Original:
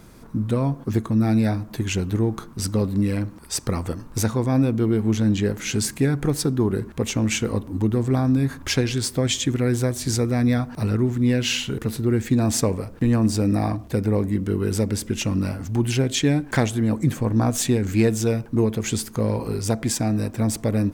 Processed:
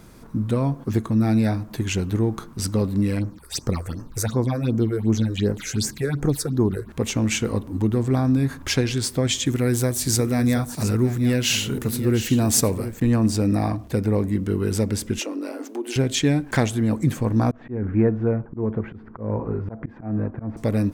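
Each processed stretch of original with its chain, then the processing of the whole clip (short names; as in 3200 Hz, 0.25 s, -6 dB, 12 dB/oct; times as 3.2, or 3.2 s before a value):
3.19–6.89 bell 3800 Hz +7 dB 0.58 oct + phaser stages 6, 2.7 Hz, lowest notch 200–3900 Hz
9.46–13 high shelf 8200 Hz +12 dB + echo 0.721 s -11.5 dB
15.19–15.96 bell 430 Hz +8.5 dB 1.8 oct + compressor 3:1, threshold -23 dBFS + Chebyshev high-pass 270 Hz, order 5
17.51–20.57 LPF 1600 Hz 24 dB/oct + auto swell 0.172 s
whole clip: dry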